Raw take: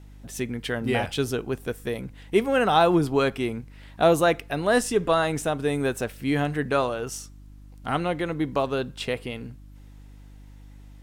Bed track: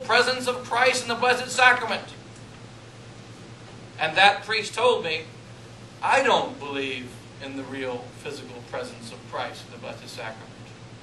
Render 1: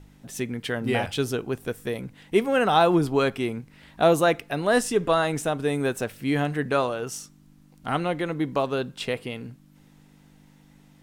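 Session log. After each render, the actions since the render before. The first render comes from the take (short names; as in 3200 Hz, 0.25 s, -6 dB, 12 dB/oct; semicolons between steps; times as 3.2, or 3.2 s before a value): de-hum 50 Hz, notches 2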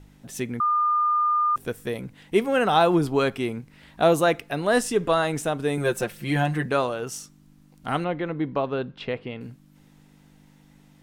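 0.6–1.56 bleep 1210 Hz -18.5 dBFS; 5.77–6.66 comb 5.7 ms, depth 80%; 8.04–9.41 air absorption 250 m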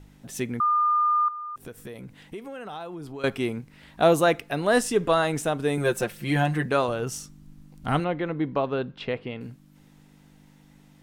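1.28–3.24 compressor 5:1, threshold -36 dBFS; 6.88–8 low shelf 150 Hz +11.5 dB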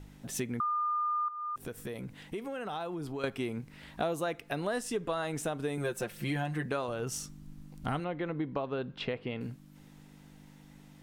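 compressor 5:1, threshold -31 dBFS, peak gain reduction 15.5 dB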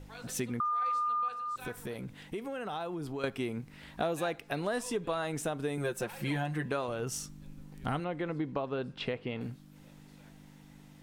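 add bed track -30 dB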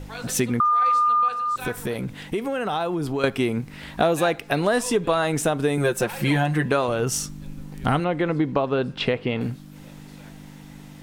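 gain +12 dB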